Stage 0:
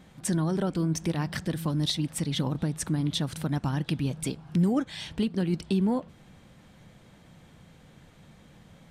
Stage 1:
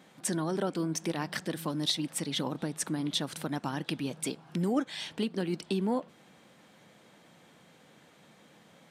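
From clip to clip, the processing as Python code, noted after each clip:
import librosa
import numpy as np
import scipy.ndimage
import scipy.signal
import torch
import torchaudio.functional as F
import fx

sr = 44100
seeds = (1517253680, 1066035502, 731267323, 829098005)

y = scipy.signal.sosfilt(scipy.signal.butter(2, 270.0, 'highpass', fs=sr, output='sos'), x)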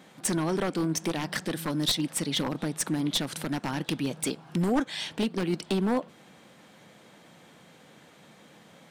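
y = np.minimum(x, 2.0 * 10.0 ** (-25.0 / 20.0) - x)
y = y * 10.0 ** (4.5 / 20.0)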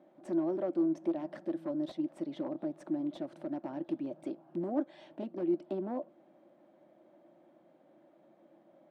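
y = fx.double_bandpass(x, sr, hz=450.0, octaves=0.79)
y = y * 10.0 ** (1.5 / 20.0)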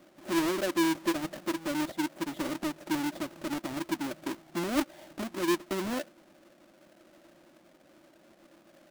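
y = fx.halfwave_hold(x, sr)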